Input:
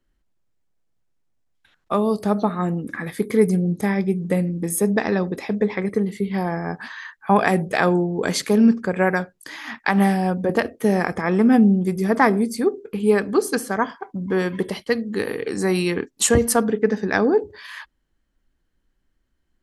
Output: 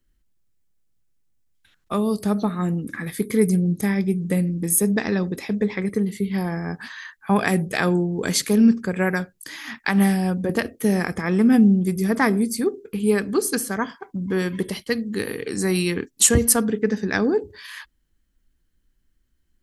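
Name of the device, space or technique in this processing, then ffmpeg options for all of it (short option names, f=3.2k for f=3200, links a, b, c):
smiley-face EQ: -af "lowshelf=f=140:g=3.5,equalizer=f=740:t=o:w=1.7:g=-7,highshelf=f=7.4k:g=9"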